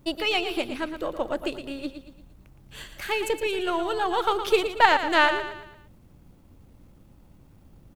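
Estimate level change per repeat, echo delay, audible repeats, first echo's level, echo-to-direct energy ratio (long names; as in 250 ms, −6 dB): −7.5 dB, 115 ms, 4, −9.5 dB, −8.5 dB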